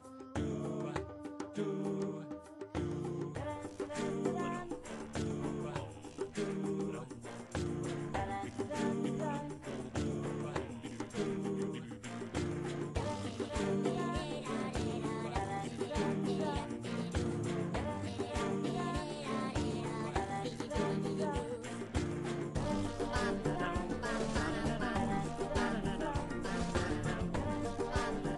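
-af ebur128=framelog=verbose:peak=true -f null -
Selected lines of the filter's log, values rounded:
Integrated loudness:
  I:         -38.2 LUFS
  Threshold: -48.2 LUFS
Loudness range:
  LRA:         3.9 LU
  Threshold: -58.2 LUFS
  LRA low:   -40.2 LUFS
  LRA high:  -36.4 LUFS
True peak:
  Peak:      -19.9 dBFS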